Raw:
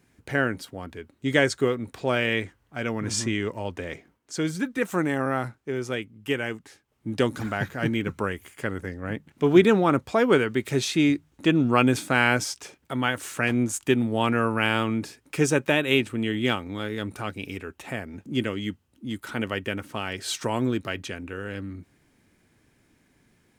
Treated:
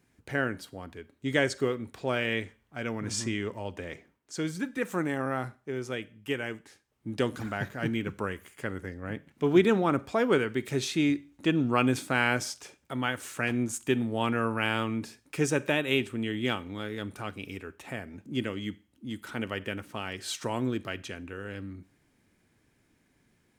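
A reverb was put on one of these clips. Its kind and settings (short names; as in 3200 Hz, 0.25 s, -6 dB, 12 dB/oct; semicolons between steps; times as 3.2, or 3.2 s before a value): Schroeder reverb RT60 0.39 s, combs from 31 ms, DRR 18.5 dB; gain -5 dB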